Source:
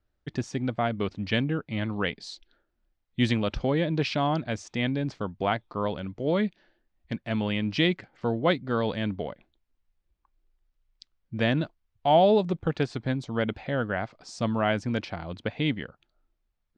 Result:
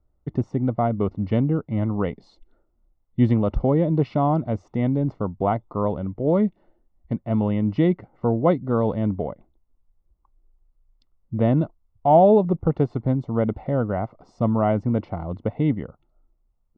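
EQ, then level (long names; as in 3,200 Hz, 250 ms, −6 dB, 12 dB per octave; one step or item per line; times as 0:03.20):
Savitzky-Golay smoothing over 65 samples
low-shelf EQ 120 Hz +5.5 dB
+5.0 dB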